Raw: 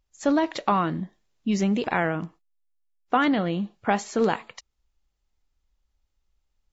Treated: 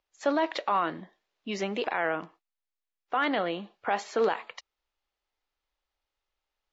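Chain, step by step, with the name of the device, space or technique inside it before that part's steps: DJ mixer with the lows and highs turned down (three-band isolator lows -20 dB, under 370 Hz, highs -19 dB, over 5.1 kHz; peak limiter -18 dBFS, peak gain reduction 9 dB); trim +1.5 dB

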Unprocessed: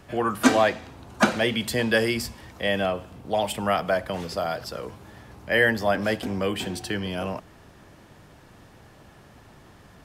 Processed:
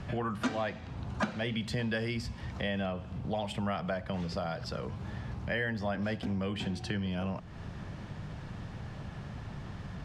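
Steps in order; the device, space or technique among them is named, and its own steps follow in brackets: jukebox (low-pass 5.3 kHz 12 dB/octave; resonant low shelf 230 Hz +7 dB, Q 1.5; compression 3:1, threshold -40 dBFS, peak gain reduction 21.5 dB); trim +4 dB

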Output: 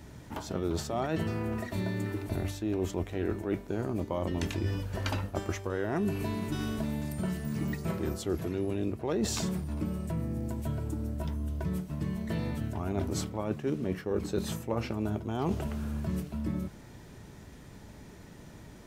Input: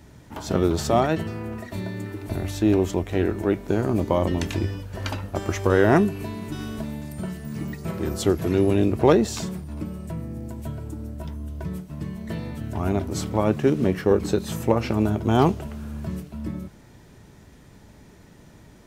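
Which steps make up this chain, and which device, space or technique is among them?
compression on the reversed sound (reverse; compression 12:1, threshold -27 dBFS, peak gain reduction 17 dB; reverse)

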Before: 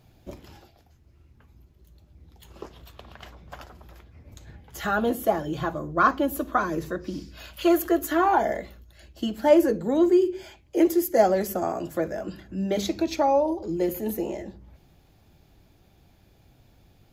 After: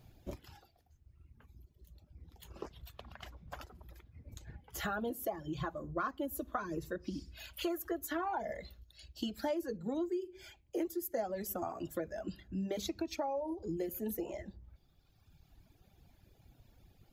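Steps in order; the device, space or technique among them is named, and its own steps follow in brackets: reverb removal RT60 1.9 s; 8.60–9.77 s: peaking EQ 4.3 kHz +8 dB 1 oct; ASMR close-microphone chain (bass shelf 110 Hz +5 dB; compression 5:1, threshold -30 dBFS, peak gain reduction 17 dB; treble shelf 10 kHz +3.5 dB); trim -4.5 dB

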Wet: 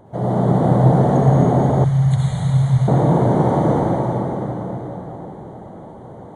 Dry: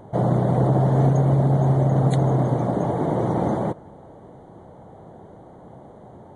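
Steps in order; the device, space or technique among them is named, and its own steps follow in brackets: cathedral (reverberation RT60 4.7 s, pre-delay 60 ms, DRR -9 dB); 1.84–2.88 s: FFT filter 140 Hz 0 dB, 290 Hz -26 dB, 2.5 kHz +1 dB; trim -3 dB

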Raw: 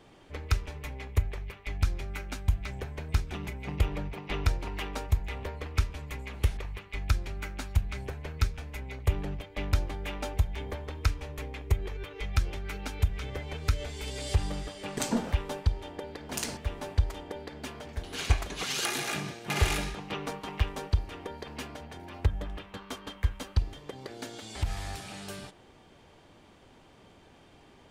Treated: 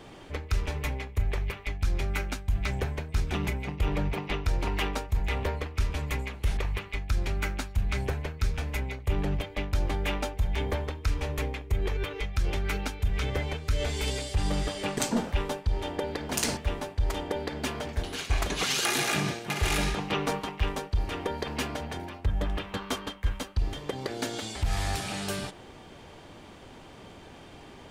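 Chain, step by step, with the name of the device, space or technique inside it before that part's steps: compression on the reversed sound (reverse; compression 6:1, threshold -32 dBFS, peak gain reduction 14.5 dB; reverse); trim +8.5 dB

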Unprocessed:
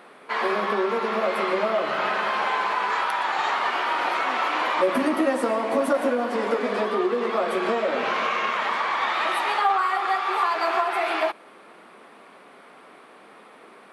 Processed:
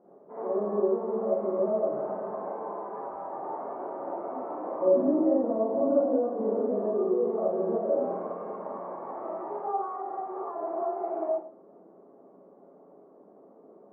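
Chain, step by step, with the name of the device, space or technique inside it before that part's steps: next room (low-pass 670 Hz 24 dB/octave; reverberation RT60 0.40 s, pre-delay 41 ms, DRR -7 dB); trim -8.5 dB

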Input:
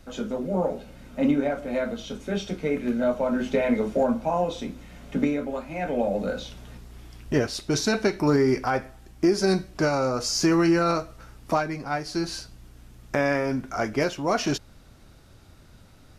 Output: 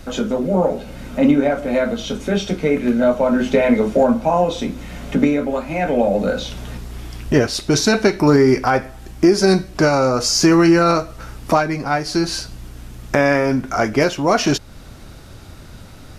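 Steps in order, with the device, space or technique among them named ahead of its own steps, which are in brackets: parallel compression (in parallel at 0 dB: compression, threshold -37 dBFS, peak gain reduction 19 dB); on the sum: trim +7 dB

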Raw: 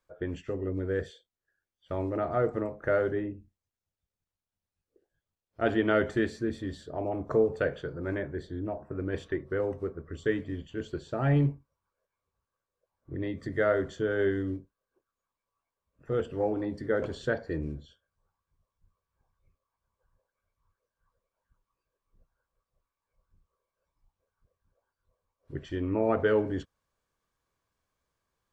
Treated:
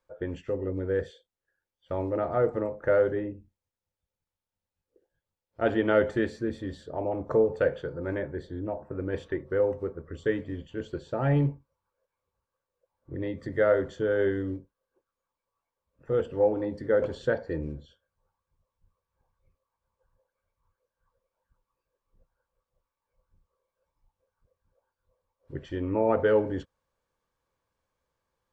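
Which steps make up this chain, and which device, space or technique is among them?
inside a helmet (treble shelf 5.8 kHz -5.5 dB; small resonant body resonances 520/880 Hz, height 8 dB)

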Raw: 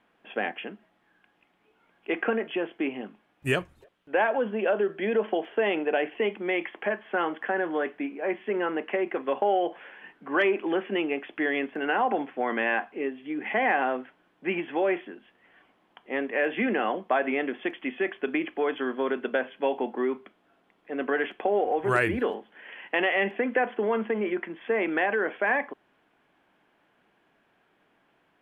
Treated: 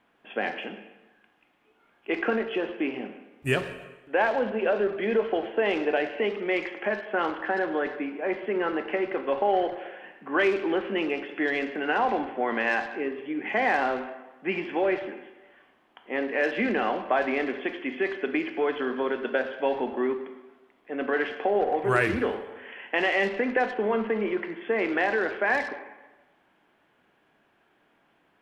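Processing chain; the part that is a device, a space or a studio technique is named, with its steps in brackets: saturated reverb return (on a send at -5 dB: reverberation RT60 1.1 s, pre-delay 11 ms + saturation -25 dBFS, distortion -12 dB)

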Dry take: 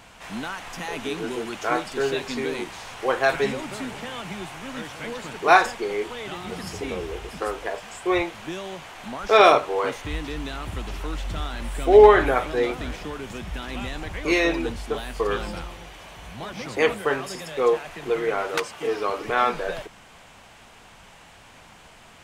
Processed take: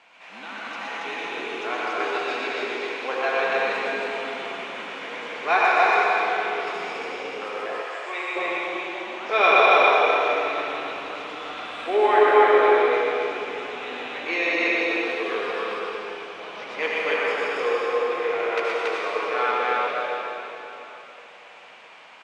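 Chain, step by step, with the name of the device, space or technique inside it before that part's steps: station announcement (band-pass 450–4100 Hz; peaking EQ 2.4 kHz +6 dB 0.4 oct; loudspeakers at several distances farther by 42 m -4 dB, 96 m -1 dB; reverberation RT60 3.5 s, pre-delay 69 ms, DRR -3.5 dB); 7.81–8.35 s: high-pass 480 Hz -> 1.4 kHz 6 dB/octave; trim -6.5 dB

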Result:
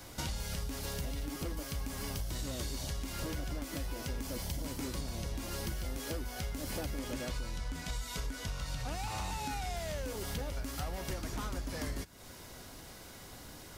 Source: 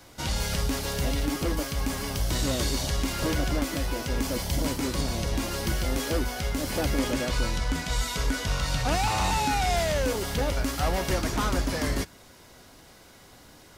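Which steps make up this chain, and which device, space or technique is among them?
ASMR close-microphone chain (bass shelf 150 Hz +4.5 dB; compression, threshold -36 dBFS, peak gain reduction 17 dB; treble shelf 7.9 kHz +5.5 dB)

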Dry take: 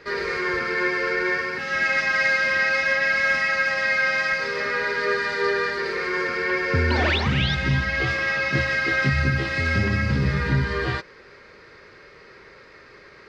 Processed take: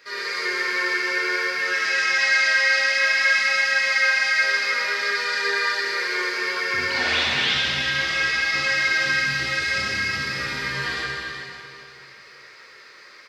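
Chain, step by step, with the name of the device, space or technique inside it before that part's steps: cave (delay 372 ms -11 dB; reverberation RT60 2.7 s, pre-delay 14 ms, DRR -5.5 dB); tilt EQ +4.5 dB/octave; trim -8.5 dB

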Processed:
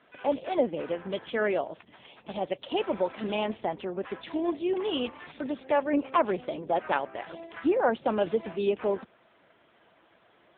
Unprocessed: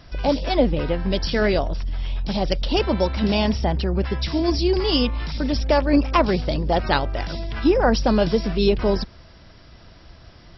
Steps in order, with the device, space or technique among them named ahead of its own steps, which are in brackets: telephone (band-pass 330–3500 Hz; trim -4.5 dB; AMR-NB 6.7 kbps 8 kHz)

